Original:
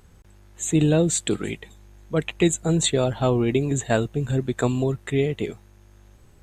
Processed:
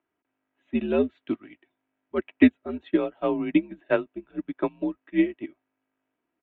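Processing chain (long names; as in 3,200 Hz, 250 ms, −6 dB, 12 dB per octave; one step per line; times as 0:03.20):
single-sideband voice off tune −86 Hz 300–3,000 Hz
comb filter 3.1 ms, depth 39%
expander for the loud parts 2.5 to 1, over −32 dBFS
level +5.5 dB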